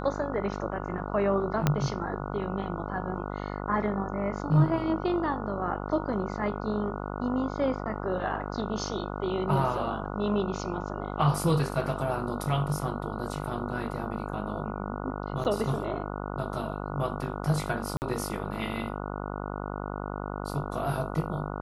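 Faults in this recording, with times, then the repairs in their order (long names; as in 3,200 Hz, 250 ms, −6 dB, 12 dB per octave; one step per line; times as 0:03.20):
mains buzz 50 Hz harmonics 29 −35 dBFS
0:01.67: click −9 dBFS
0:15.44–0:15.45: drop-out 8.6 ms
0:17.97–0:18.02: drop-out 49 ms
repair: click removal
hum removal 50 Hz, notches 29
repair the gap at 0:15.44, 8.6 ms
repair the gap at 0:17.97, 49 ms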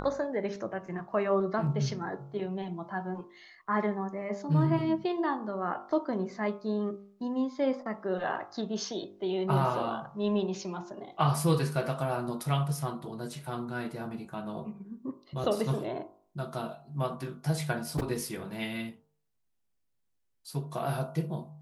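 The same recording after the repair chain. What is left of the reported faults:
0:01.67: click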